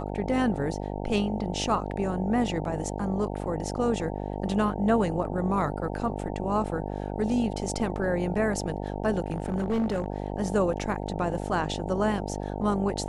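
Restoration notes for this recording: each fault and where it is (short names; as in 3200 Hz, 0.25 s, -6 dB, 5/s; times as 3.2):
buzz 50 Hz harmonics 18 -33 dBFS
9.24–10.06 clipped -22.5 dBFS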